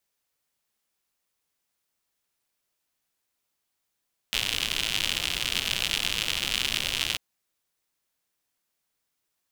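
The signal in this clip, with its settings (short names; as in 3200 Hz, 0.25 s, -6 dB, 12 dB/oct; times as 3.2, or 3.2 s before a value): rain from filtered ticks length 2.84 s, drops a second 110, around 3000 Hz, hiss -10 dB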